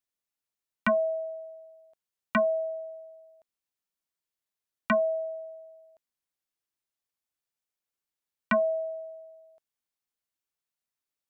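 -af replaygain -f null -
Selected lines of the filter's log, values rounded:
track_gain = +10.5 dB
track_peak = 0.094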